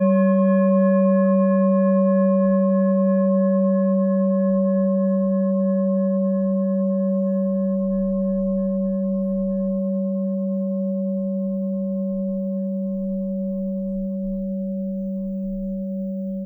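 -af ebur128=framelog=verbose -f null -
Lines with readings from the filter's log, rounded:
Integrated loudness:
  I:         -21.0 LUFS
  Threshold: -31.0 LUFS
Loudness range:
  LRA:         8.0 LU
  Threshold: -41.3 LUFS
  LRA low:   -25.9 LUFS
  LRA high:  -17.9 LUFS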